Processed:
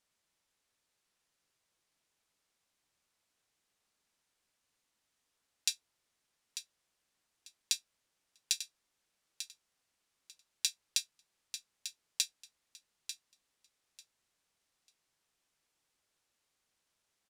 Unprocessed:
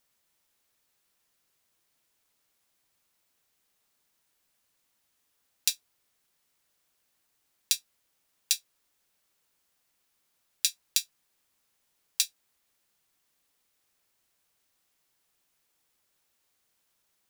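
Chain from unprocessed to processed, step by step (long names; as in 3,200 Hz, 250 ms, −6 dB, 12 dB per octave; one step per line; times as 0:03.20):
low-pass filter 9,300 Hz 12 dB per octave
repeating echo 894 ms, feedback 20%, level −10.5 dB
level −4.5 dB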